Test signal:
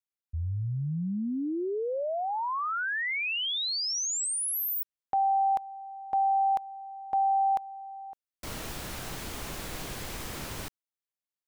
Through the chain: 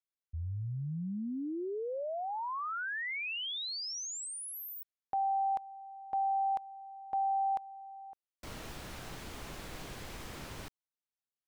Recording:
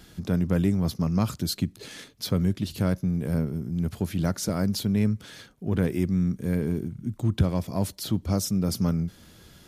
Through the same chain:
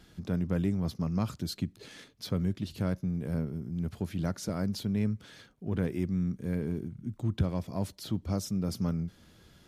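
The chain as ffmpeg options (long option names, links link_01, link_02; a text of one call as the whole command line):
ffmpeg -i in.wav -af "highshelf=frequency=7300:gain=-8,volume=-6dB" out.wav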